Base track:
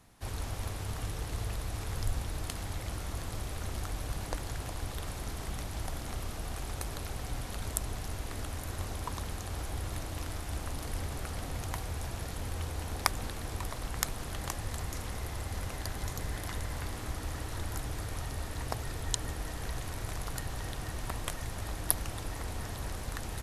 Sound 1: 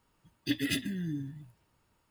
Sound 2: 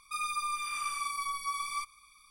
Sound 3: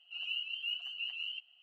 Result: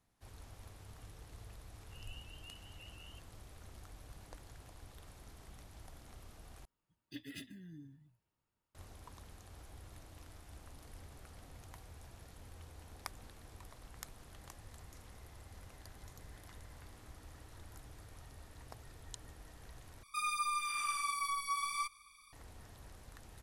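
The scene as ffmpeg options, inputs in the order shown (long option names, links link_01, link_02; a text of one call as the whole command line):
ffmpeg -i bed.wav -i cue0.wav -i cue1.wav -i cue2.wav -filter_complex "[0:a]volume=-17dB[link_01];[3:a]tiltshelf=frequency=970:gain=4[link_02];[link_01]asplit=3[link_03][link_04][link_05];[link_03]atrim=end=6.654[link_06];[1:a]atrim=end=2.1,asetpts=PTS-STARTPTS,volume=-17dB[link_07];[link_04]atrim=start=8.746:end=20.034[link_08];[2:a]atrim=end=2.3,asetpts=PTS-STARTPTS,volume=-2dB[link_09];[link_05]atrim=start=22.326[link_10];[link_02]atrim=end=1.62,asetpts=PTS-STARTPTS,volume=-15.5dB,afade=type=in:duration=0.004:curve=hsin,afade=type=out:start_time=1.616:duration=0.004:curve=hsin,adelay=1800[link_11];[link_06][link_07]acrossfade=duration=0.004:curve1=hsin:curve2=hsin[link_12];[link_12][link_08]acrossfade=duration=0.004:curve1=hsin:curve2=hsin[link_13];[link_13][link_09]acrossfade=duration=0.004:curve1=hsin:curve2=hsin[link_14];[link_14][link_10]acrossfade=duration=0.004:curve1=hsin:curve2=hsin[link_15];[link_15][link_11]amix=inputs=2:normalize=0" out.wav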